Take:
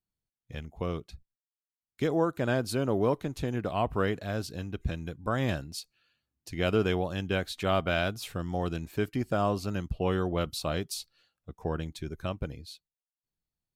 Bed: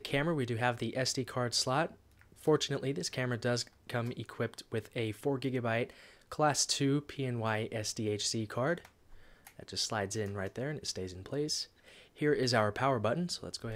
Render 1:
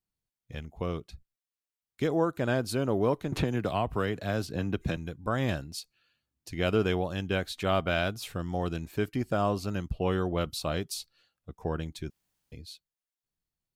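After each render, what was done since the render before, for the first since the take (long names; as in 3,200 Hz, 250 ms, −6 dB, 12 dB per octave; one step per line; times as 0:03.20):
0:03.32–0:04.97: multiband upward and downward compressor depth 100%
0:12.10–0:12.52: fill with room tone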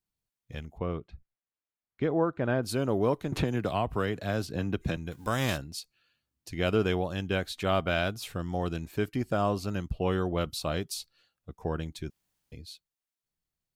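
0:00.78–0:02.63: low-pass filter 2,200 Hz
0:05.11–0:05.56: spectral envelope flattened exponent 0.6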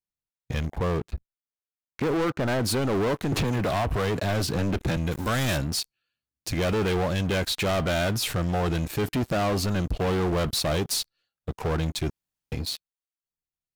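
leveller curve on the samples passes 5
brickwall limiter −21.5 dBFS, peak gain reduction 7.5 dB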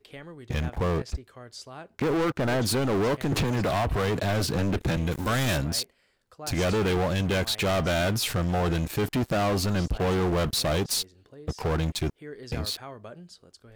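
mix in bed −11.5 dB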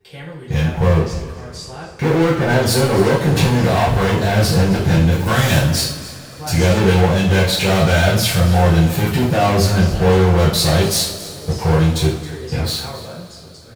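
single-tap delay 271 ms −16.5 dB
coupled-rooms reverb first 0.51 s, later 4.5 s, from −22 dB, DRR −9.5 dB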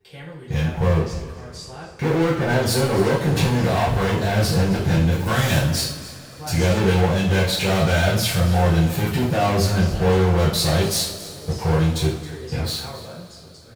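level −4.5 dB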